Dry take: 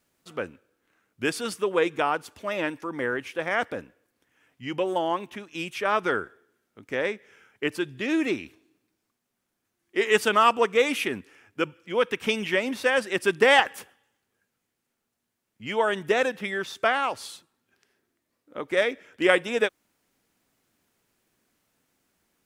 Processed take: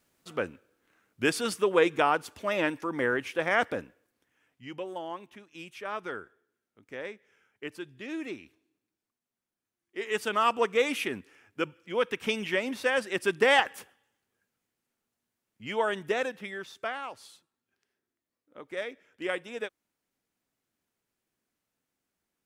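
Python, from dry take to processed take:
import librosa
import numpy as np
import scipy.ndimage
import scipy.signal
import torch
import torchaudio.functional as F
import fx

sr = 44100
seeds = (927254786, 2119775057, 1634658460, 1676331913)

y = fx.gain(x, sr, db=fx.line((3.74, 0.5), (4.9, -11.5), (9.97, -11.5), (10.61, -4.0), (15.84, -4.0), (17.02, -12.0)))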